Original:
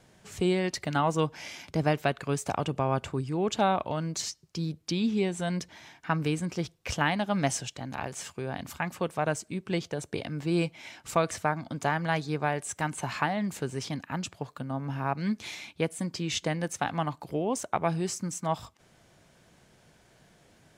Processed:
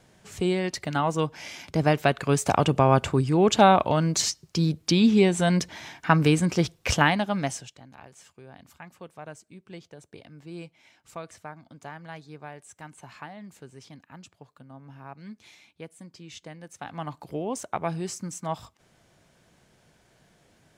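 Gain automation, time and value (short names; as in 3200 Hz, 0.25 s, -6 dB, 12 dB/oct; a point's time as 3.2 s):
1.35 s +1 dB
2.6 s +8.5 dB
6.92 s +8.5 dB
7.49 s -2 dB
7.9 s -13 dB
16.65 s -13 dB
17.16 s -1.5 dB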